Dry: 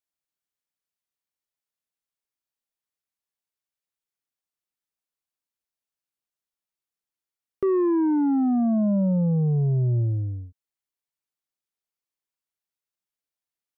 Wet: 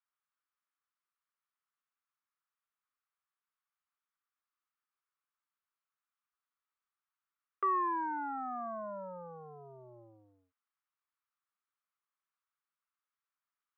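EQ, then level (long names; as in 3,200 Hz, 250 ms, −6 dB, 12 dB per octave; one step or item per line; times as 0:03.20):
high-pass with resonance 1,200 Hz, resonance Q 3.8
high-frequency loss of the air 360 metres
0.0 dB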